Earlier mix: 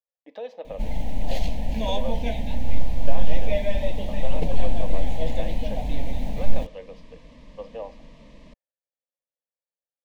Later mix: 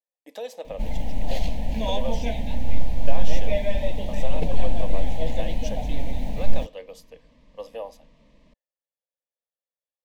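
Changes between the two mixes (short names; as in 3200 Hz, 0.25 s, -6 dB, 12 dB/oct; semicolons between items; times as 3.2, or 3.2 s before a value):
speech: remove air absorption 280 m; second sound -9.0 dB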